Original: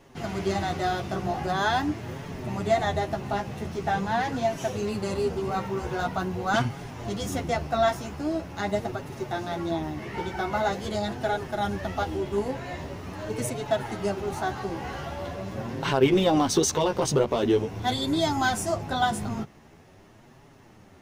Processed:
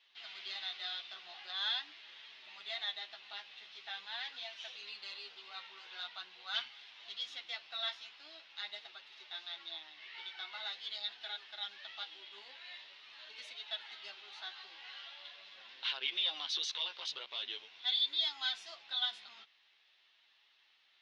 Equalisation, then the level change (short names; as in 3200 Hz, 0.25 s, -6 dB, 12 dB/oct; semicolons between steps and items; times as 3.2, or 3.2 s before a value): ladder band-pass 4200 Hz, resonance 55%; air absorption 340 m; +14.5 dB